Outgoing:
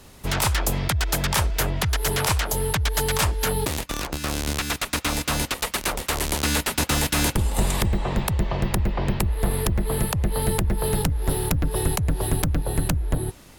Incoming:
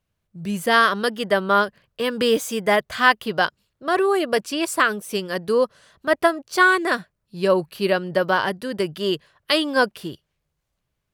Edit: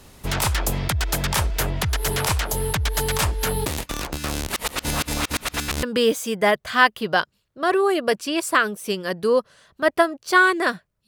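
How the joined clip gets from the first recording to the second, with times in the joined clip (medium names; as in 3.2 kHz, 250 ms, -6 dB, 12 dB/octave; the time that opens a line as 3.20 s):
outgoing
4.47–5.83 s: reverse
5.83 s: go over to incoming from 2.08 s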